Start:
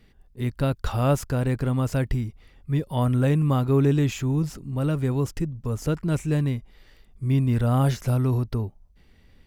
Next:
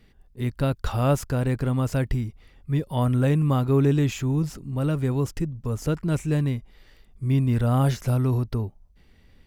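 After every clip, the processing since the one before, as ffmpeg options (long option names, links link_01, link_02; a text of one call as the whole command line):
ffmpeg -i in.wav -af anull out.wav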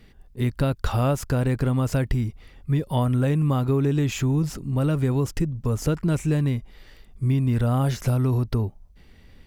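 ffmpeg -i in.wav -af "acompressor=threshold=-23dB:ratio=6,volume=5dB" out.wav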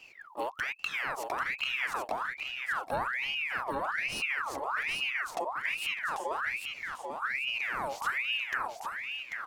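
ffmpeg -i in.wav -af "acompressor=threshold=-29dB:ratio=6,aecho=1:1:791|1582|2373|3164:0.562|0.157|0.0441|0.0123,aeval=exprs='val(0)*sin(2*PI*1700*n/s+1700*0.6/1.2*sin(2*PI*1.2*n/s))':channel_layout=same" out.wav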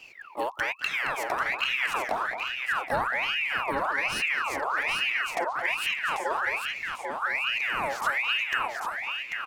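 ffmpeg -i in.wav -filter_complex "[0:a]asplit=2[link_01][link_02];[link_02]adelay=220,highpass=300,lowpass=3400,asoftclip=type=hard:threshold=-26.5dB,volume=-7dB[link_03];[link_01][link_03]amix=inputs=2:normalize=0,volume=4.5dB" out.wav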